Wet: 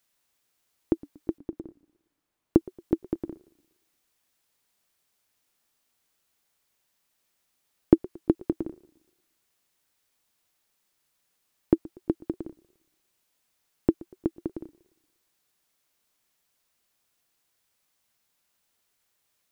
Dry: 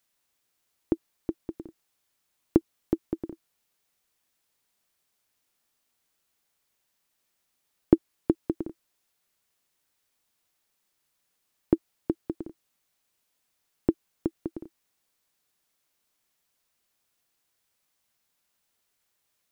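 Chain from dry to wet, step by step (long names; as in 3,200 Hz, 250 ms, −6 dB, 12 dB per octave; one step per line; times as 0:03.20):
0:01.38–0:02.57: high-shelf EQ 2,200 Hz −11 dB
feedback echo with a swinging delay time 117 ms, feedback 45%, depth 211 cents, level −22.5 dB
level +1.5 dB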